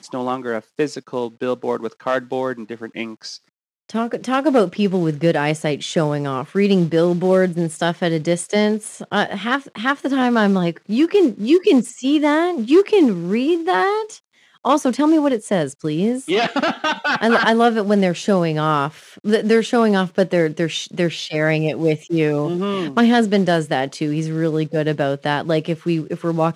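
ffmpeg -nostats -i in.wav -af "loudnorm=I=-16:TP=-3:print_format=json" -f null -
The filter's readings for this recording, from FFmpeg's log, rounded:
"input_i" : "-19.0",
"input_tp" : "-4.0",
"input_lra" : "4.6",
"input_thresh" : "-29.2",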